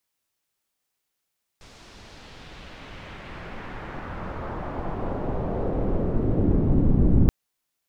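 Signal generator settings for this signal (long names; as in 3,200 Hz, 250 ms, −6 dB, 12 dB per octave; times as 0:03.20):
filter sweep on noise pink, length 5.68 s lowpass, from 6,200 Hz, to 210 Hz, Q 1.2, exponential, gain ramp +35 dB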